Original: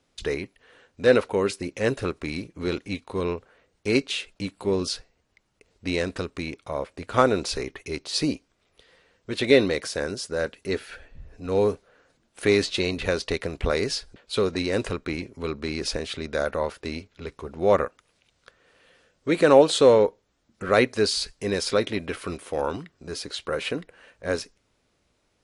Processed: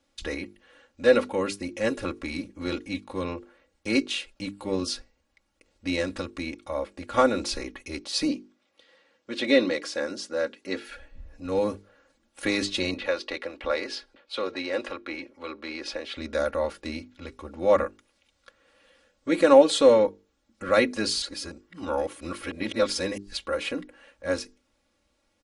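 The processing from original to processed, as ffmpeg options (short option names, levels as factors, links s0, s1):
-filter_complex "[0:a]asettb=1/sr,asplit=3[s0][s1][s2];[s0]atrim=end=8.284[s3];[s1]atrim=start=8.28:end=10.85,asetpts=PTS-STARTPTS,afade=t=in:d=0.004:c=qsin,afade=t=out:st=2.566:d=0.004:c=qsin,highpass=190,lowpass=7000[s4];[s2]atrim=start=10.846[s5];[s3][s4]acrossfade=d=0.004:c1=hsin:c2=qsin[s6];[s6][s5]acrossfade=d=0.004:c1=qsin:c2=hsin,asettb=1/sr,asplit=3[s7][s8][s9];[s7]atrim=end=12.944[s10];[s8]atrim=start=12.94:end=16.17,asetpts=PTS-STARTPTS,afade=t=in:d=0.004:c=qsin,afade=t=out:st=3.226:d=0.004:c=qsin,acrossover=split=330 4700:gain=0.126 1 0.178[s11][s12][s13];[s11][s12][s13]amix=inputs=3:normalize=0[s14];[s9]atrim=start=16.166[s15];[s10][s14]acrossfade=d=0.004:c1=hsin:c2=qsin[s16];[s16][s15]acrossfade=d=0.004:c1=qsin:c2=hsin,asplit=3[s17][s18][s19];[s17]atrim=end=21.222[s20];[s18]atrim=start=21.218:end=23.372,asetpts=PTS-STARTPTS,areverse[s21];[s19]atrim=start=23.368[s22];[s20][s21]acrossfade=d=0.004:c1=hsin:c2=hsin[s23];[s23][s22]acrossfade=d=0.004:c1=hsin:c2=hsin,bandreject=f=50:t=h:w=6,bandreject=f=100:t=h:w=6,bandreject=f=150:t=h:w=6,bandreject=f=200:t=h:w=6,bandreject=f=250:t=h:w=6,bandreject=f=300:t=h:w=6,bandreject=f=350:t=h:w=6,bandreject=f=400:t=h:w=6,bandreject=f=450:t=h:w=6,aecho=1:1:3.6:0.79,volume=0.668"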